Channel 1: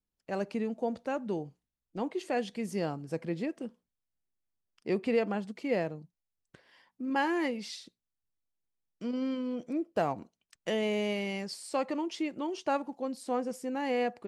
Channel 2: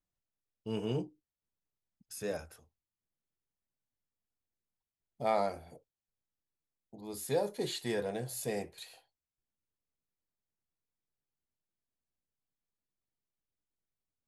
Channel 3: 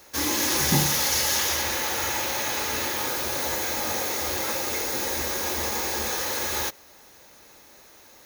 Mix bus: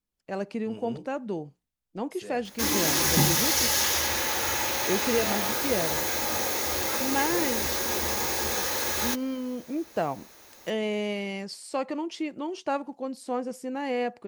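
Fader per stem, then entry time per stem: +1.5, −6.5, −0.5 decibels; 0.00, 0.00, 2.45 seconds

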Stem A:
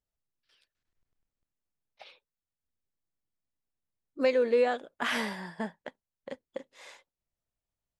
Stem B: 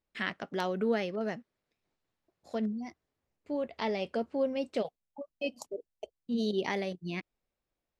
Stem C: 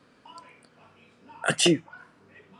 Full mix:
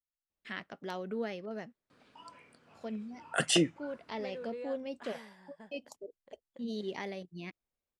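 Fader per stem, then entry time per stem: −18.5, −7.0, −5.5 decibels; 0.00, 0.30, 1.90 seconds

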